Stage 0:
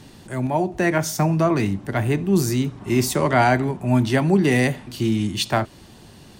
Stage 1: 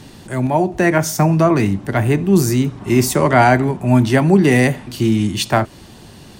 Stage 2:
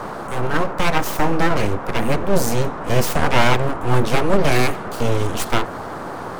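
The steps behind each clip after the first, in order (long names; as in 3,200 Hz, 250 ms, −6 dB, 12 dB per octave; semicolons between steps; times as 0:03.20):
dynamic equaliser 3,800 Hz, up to −4 dB, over −39 dBFS, Q 1.5; level +5.5 dB
full-wave rectification; noise in a band 88–1,300 Hz −29 dBFS; level −1 dB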